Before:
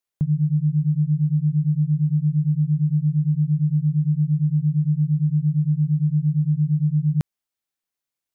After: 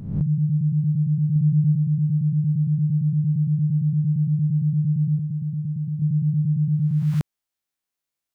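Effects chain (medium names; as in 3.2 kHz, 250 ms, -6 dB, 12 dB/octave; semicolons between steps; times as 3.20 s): reverse spectral sustain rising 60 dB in 0.75 s; 1.35–1.75 s: comb 6.9 ms, depth 40%; 5.17–6.02 s: dynamic bell 150 Hz, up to -6 dB, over -30 dBFS, Q 2.8; trim -1.5 dB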